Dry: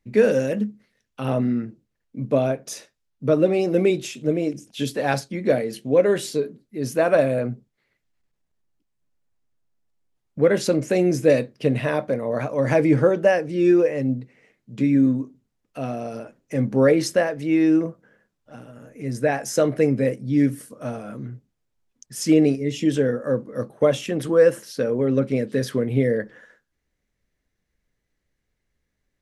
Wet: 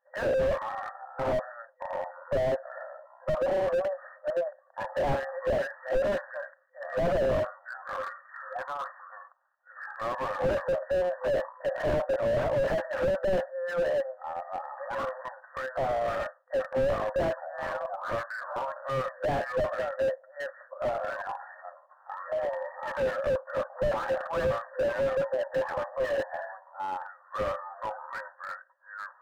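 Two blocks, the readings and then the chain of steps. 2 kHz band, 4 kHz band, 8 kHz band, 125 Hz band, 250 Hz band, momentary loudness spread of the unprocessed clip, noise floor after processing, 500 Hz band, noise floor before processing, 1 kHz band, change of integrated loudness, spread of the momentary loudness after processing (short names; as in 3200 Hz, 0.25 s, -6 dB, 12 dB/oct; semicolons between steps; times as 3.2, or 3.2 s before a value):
-4.0 dB, -9.5 dB, under -15 dB, -14.0 dB, -20.5 dB, 14 LU, -60 dBFS, -7.0 dB, -77 dBFS, +0.5 dB, -9.5 dB, 13 LU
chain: echoes that change speed 0.133 s, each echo -6 st, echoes 2, each echo -6 dB; FFT band-pass 510–1900 Hz; slew limiter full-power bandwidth 16 Hz; gain +6.5 dB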